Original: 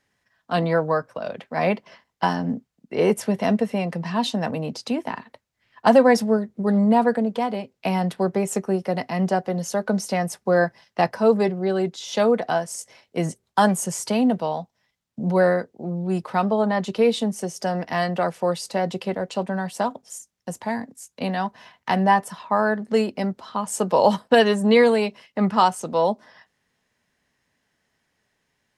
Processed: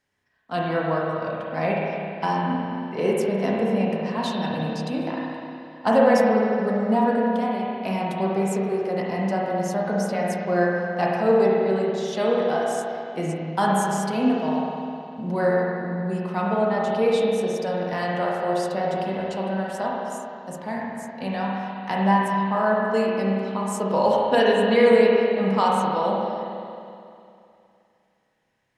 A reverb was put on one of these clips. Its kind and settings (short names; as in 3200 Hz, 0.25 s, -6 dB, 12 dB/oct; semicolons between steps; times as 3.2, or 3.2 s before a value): spring tank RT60 2.6 s, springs 31/51 ms, chirp 50 ms, DRR -4 dB; gain -6 dB